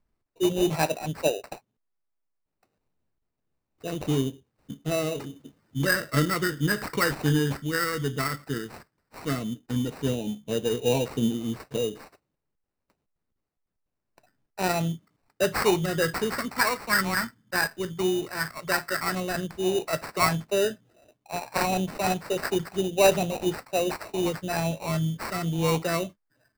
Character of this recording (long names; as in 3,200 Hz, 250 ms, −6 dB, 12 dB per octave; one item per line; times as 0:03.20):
phaser sweep stages 4, 0.1 Hz, lowest notch 690–1,500 Hz
aliases and images of a low sample rate 3,300 Hz, jitter 0%